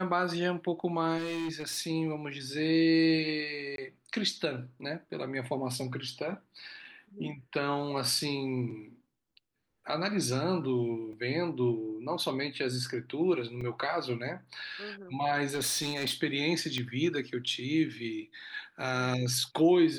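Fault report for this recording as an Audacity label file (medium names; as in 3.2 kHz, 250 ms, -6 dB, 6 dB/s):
1.170000	1.780000	clipped -31 dBFS
3.760000	3.780000	dropout 22 ms
11.130000	11.130000	dropout 2.2 ms
13.610000	13.610000	dropout 4.3 ms
15.530000	16.140000	clipped -27 dBFS
16.780000	16.780000	pop -20 dBFS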